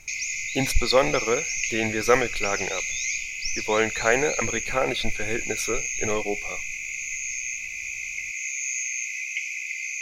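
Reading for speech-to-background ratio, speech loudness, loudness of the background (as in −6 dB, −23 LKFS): 2.0 dB, −26.0 LKFS, −28.0 LKFS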